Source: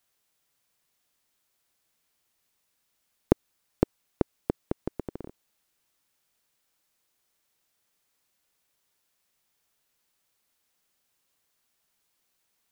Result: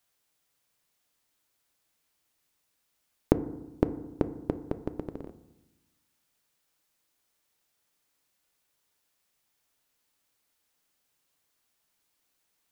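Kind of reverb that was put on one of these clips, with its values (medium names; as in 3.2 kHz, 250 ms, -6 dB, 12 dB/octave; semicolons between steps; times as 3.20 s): FDN reverb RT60 1 s, low-frequency decay 1.35×, high-frequency decay 0.3×, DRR 11 dB; trim -1 dB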